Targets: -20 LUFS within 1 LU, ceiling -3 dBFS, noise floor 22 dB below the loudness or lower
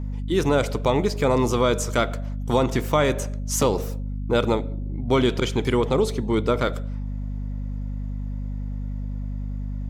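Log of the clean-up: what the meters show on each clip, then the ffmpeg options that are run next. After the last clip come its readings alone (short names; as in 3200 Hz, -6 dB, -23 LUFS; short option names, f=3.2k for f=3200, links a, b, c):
hum 50 Hz; harmonics up to 250 Hz; hum level -26 dBFS; loudness -24.5 LUFS; peak -7.0 dBFS; loudness target -20.0 LUFS
-> -af "bandreject=f=50:t=h:w=4,bandreject=f=100:t=h:w=4,bandreject=f=150:t=h:w=4,bandreject=f=200:t=h:w=4,bandreject=f=250:t=h:w=4"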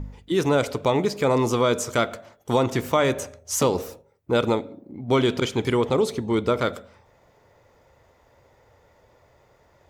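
hum none; loudness -23.5 LUFS; peak -8.5 dBFS; loudness target -20.0 LUFS
-> -af "volume=3.5dB"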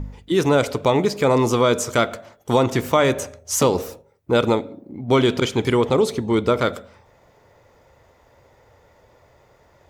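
loudness -20.0 LUFS; peak -5.0 dBFS; noise floor -56 dBFS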